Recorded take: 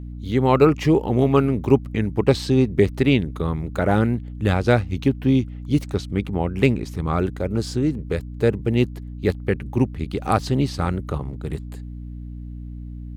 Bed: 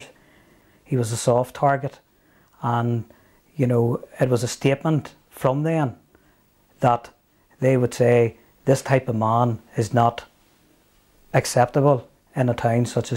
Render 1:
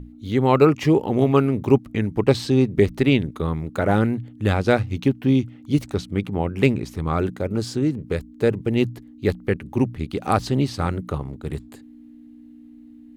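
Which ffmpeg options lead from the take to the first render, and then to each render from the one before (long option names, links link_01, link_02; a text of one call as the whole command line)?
ffmpeg -i in.wav -af "bandreject=frequency=60:width_type=h:width=6,bandreject=frequency=120:width_type=h:width=6,bandreject=frequency=180:width_type=h:width=6" out.wav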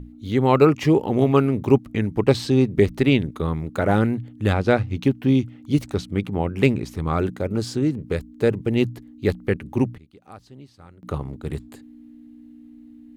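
ffmpeg -i in.wav -filter_complex "[0:a]asettb=1/sr,asplit=3[link_01][link_02][link_03];[link_01]atrim=end=4.534[link_04];[link_02]atrim=start=4.53:end=5.01,asetpts=PTS-STARTPTS,afade=type=in:duration=0.004:curve=qsin,afade=type=out:start_time=0.476:duration=0.004:curve=qsin,highshelf=frequency=5500:gain=-9[link_05];[link_03]atrim=start=5.006[link_06];[link_04][link_05]acrossfade=duration=0.004:curve1=hsin:curve2=qsin[link_07];[link_07][link_06]acrossfade=duration=0.004:curve1=qsin:curve2=hsin,asplit=3[link_08][link_09][link_10];[link_08]atrim=end=9.98,asetpts=PTS-STARTPTS,afade=type=out:start_time=9.68:duration=0.3:curve=log:silence=0.0707946[link_11];[link_09]atrim=start=9.98:end=11.03,asetpts=PTS-STARTPTS,volume=-23dB[link_12];[link_10]atrim=start=11.03,asetpts=PTS-STARTPTS,afade=type=in:duration=0.3:curve=log:silence=0.0707946[link_13];[link_11][link_12][link_13]concat=n=3:v=0:a=1" out.wav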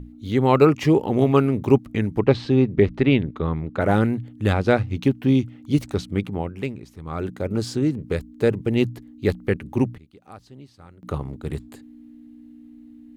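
ffmpeg -i in.wav -filter_complex "[0:a]asplit=3[link_01][link_02][link_03];[link_01]afade=type=out:start_time=2.19:duration=0.02[link_04];[link_02]lowpass=3200,afade=type=in:start_time=2.19:duration=0.02,afade=type=out:start_time=3.79:duration=0.02[link_05];[link_03]afade=type=in:start_time=3.79:duration=0.02[link_06];[link_04][link_05][link_06]amix=inputs=3:normalize=0,asplit=3[link_07][link_08][link_09];[link_07]atrim=end=6.67,asetpts=PTS-STARTPTS,afade=type=out:start_time=6.18:duration=0.49:silence=0.266073[link_10];[link_08]atrim=start=6.67:end=7.03,asetpts=PTS-STARTPTS,volume=-11.5dB[link_11];[link_09]atrim=start=7.03,asetpts=PTS-STARTPTS,afade=type=in:duration=0.49:silence=0.266073[link_12];[link_10][link_11][link_12]concat=n=3:v=0:a=1" out.wav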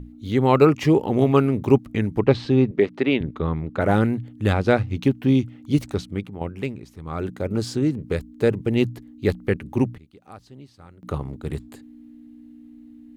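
ffmpeg -i in.wav -filter_complex "[0:a]asettb=1/sr,asplit=3[link_01][link_02][link_03];[link_01]atrim=end=2.714[link_04];[link_02]atrim=start=2.71:end=3.21,asetpts=PTS-STARTPTS,afade=type=in:duration=0.004:curve=qsin,afade=type=out:start_time=0.496:duration=0.004:curve=qsin,highpass=270[link_05];[link_03]atrim=start=3.206[link_06];[link_04][link_05]acrossfade=duration=0.004:curve1=hsin:curve2=qsin[link_07];[link_07][link_06]acrossfade=duration=0.004:curve1=qsin:curve2=hsin,asplit=2[link_08][link_09];[link_08]atrim=end=6.41,asetpts=PTS-STARTPTS,afade=type=out:start_time=5.87:duration=0.54:silence=0.334965[link_10];[link_09]atrim=start=6.41,asetpts=PTS-STARTPTS,afade=type=in:duration=0.004:curve=hsin:silence=0.334965[link_11];[link_10][link_11]concat=n=2:v=0:a=1" out.wav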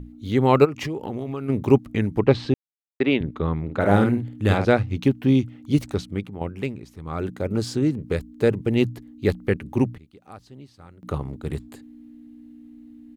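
ffmpeg -i in.wav -filter_complex "[0:a]asplit=3[link_01][link_02][link_03];[link_01]afade=type=out:start_time=0.64:duration=0.02[link_04];[link_02]acompressor=threshold=-25dB:ratio=16:attack=3.2:release=140:knee=1:detection=peak,afade=type=in:start_time=0.64:duration=0.02,afade=type=out:start_time=1.48:duration=0.02[link_05];[link_03]afade=type=in:start_time=1.48:duration=0.02[link_06];[link_04][link_05][link_06]amix=inputs=3:normalize=0,asplit=3[link_07][link_08][link_09];[link_07]afade=type=out:start_time=3.68:duration=0.02[link_10];[link_08]asplit=2[link_11][link_12];[link_12]adelay=50,volume=-5.5dB[link_13];[link_11][link_13]amix=inputs=2:normalize=0,afade=type=in:start_time=3.68:duration=0.02,afade=type=out:start_time=4.64:duration=0.02[link_14];[link_09]afade=type=in:start_time=4.64:duration=0.02[link_15];[link_10][link_14][link_15]amix=inputs=3:normalize=0,asplit=3[link_16][link_17][link_18];[link_16]atrim=end=2.54,asetpts=PTS-STARTPTS,afade=type=out:start_time=2.536:duration=0.004:curve=hsin[link_19];[link_17]atrim=start=2.54:end=3,asetpts=PTS-STARTPTS,volume=0[link_20];[link_18]atrim=start=3,asetpts=PTS-STARTPTS,afade=type=in:duration=0.004:curve=hsin[link_21];[link_19][link_20][link_21]concat=n=3:v=0:a=1" out.wav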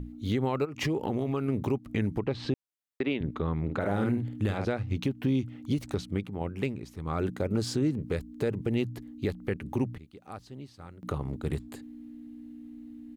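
ffmpeg -i in.wav -af "acompressor=threshold=-19dB:ratio=5,alimiter=limit=-18.5dB:level=0:latency=1:release=210" out.wav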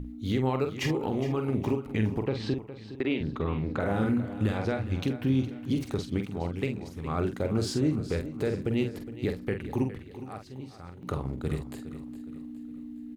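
ffmpeg -i in.wav -filter_complex "[0:a]asplit=2[link_01][link_02];[link_02]adelay=46,volume=-7dB[link_03];[link_01][link_03]amix=inputs=2:normalize=0,aecho=1:1:413|826|1239|1652:0.211|0.0909|0.0391|0.0168" out.wav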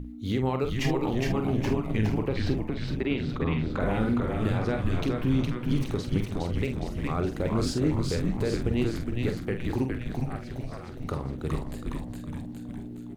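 ffmpeg -i in.wav -filter_complex "[0:a]asplit=9[link_01][link_02][link_03][link_04][link_05][link_06][link_07][link_08][link_09];[link_02]adelay=413,afreqshift=-120,volume=-3dB[link_10];[link_03]adelay=826,afreqshift=-240,volume=-7.9dB[link_11];[link_04]adelay=1239,afreqshift=-360,volume=-12.8dB[link_12];[link_05]adelay=1652,afreqshift=-480,volume=-17.6dB[link_13];[link_06]adelay=2065,afreqshift=-600,volume=-22.5dB[link_14];[link_07]adelay=2478,afreqshift=-720,volume=-27.4dB[link_15];[link_08]adelay=2891,afreqshift=-840,volume=-32.3dB[link_16];[link_09]adelay=3304,afreqshift=-960,volume=-37.2dB[link_17];[link_01][link_10][link_11][link_12][link_13][link_14][link_15][link_16][link_17]amix=inputs=9:normalize=0" out.wav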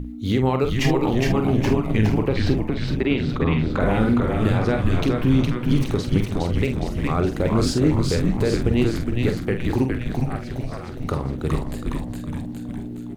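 ffmpeg -i in.wav -af "volume=7dB" out.wav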